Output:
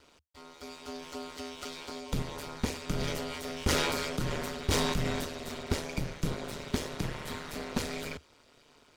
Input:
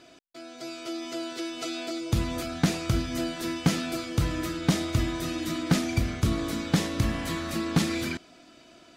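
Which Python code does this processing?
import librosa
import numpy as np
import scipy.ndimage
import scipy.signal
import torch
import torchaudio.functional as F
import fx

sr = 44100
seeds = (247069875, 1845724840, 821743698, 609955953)

y = fx.lower_of_two(x, sr, delay_ms=2.1)
y = y * np.sin(2.0 * np.pi * 75.0 * np.arange(len(y)) / sr)
y = fx.sustainer(y, sr, db_per_s=25.0, at=(2.98, 5.24), fade=0.02)
y = F.gain(torch.from_numpy(y), -3.0).numpy()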